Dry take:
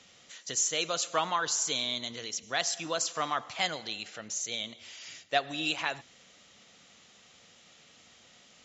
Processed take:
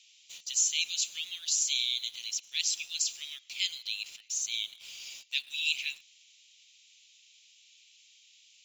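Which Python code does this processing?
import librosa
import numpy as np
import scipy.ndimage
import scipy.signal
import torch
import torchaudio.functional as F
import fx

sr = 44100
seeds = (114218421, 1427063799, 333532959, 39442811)

p1 = scipy.signal.sosfilt(scipy.signal.cheby1(5, 1.0, 2400.0, 'highpass', fs=sr, output='sos'), x)
p2 = fx.quant_dither(p1, sr, seeds[0], bits=8, dither='none')
y = p1 + (p2 * librosa.db_to_amplitude(-8.0))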